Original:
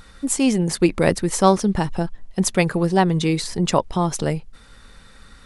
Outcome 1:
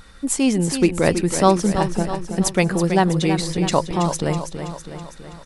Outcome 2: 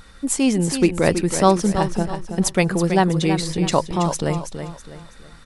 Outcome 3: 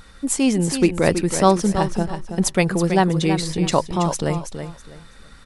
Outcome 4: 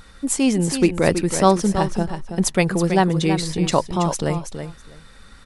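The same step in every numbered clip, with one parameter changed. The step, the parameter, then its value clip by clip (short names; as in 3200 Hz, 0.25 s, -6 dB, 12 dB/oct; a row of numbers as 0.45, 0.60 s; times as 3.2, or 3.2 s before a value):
feedback echo, feedback: 57, 36, 24, 15%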